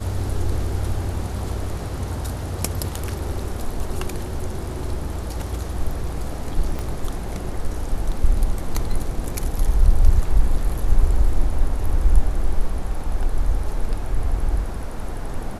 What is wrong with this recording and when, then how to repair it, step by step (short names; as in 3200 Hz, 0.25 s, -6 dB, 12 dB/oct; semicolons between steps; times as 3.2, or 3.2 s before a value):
6.79 pop -15 dBFS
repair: de-click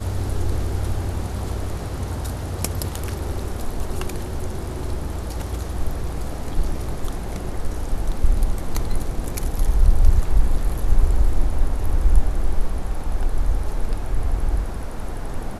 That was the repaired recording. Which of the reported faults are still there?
6.79 pop